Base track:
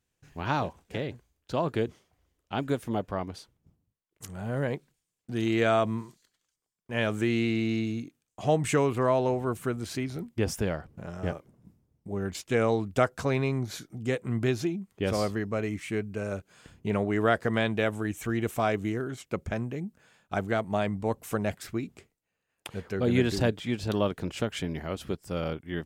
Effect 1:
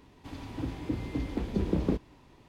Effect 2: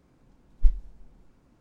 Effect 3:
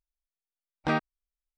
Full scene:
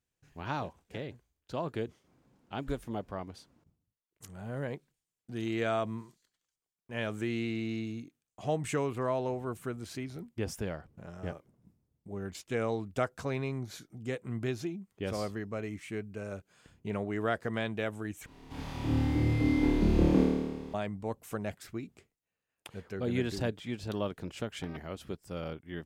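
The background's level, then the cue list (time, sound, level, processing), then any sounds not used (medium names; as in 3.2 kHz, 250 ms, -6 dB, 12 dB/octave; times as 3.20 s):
base track -7 dB
2.04 s: add 2 -4.5 dB + high-pass 100 Hz
18.26 s: replace with 1 -1.5 dB + flutter echo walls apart 4.6 m, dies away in 1.4 s
23.77 s: add 3 -10.5 dB + compressor with a negative ratio -34 dBFS, ratio -0.5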